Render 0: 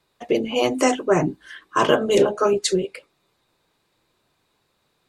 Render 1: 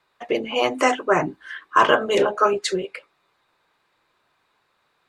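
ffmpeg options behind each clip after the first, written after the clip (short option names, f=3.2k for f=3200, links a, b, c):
-af "equalizer=f=1.4k:w=0.44:g=14,volume=-8dB"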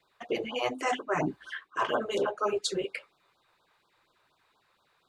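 -af "areverse,acompressor=threshold=-24dB:ratio=8,areverse,afftfilt=real='re*(1-between(b*sr/1024,210*pow(2300/210,0.5+0.5*sin(2*PI*4.2*pts/sr))/1.41,210*pow(2300/210,0.5+0.5*sin(2*PI*4.2*pts/sr))*1.41))':imag='im*(1-between(b*sr/1024,210*pow(2300/210,0.5+0.5*sin(2*PI*4.2*pts/sr))/1.41,210*pow(2300/210,0.5+0.5*sin(2*PI*4.2*pts/sr))*1.41))':win_size=1024:overlap=0.75,volume=-1dB"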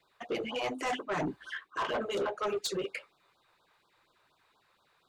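-af "asoftclip=type=tanh:threshold=-27dB"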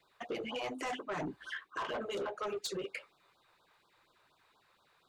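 -af "acompressor=threshold=-38dB:ratio=2.5"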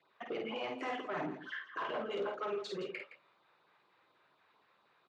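-filter_complex "[0:a]highpass=150,lowpass=3.2k,asplit=2[a][b];[b]aecho=0:1:49.56|166.2:0.631|0.251[c];[a][c]amix=inputs=2:normalize=0,volume=-1.5dB"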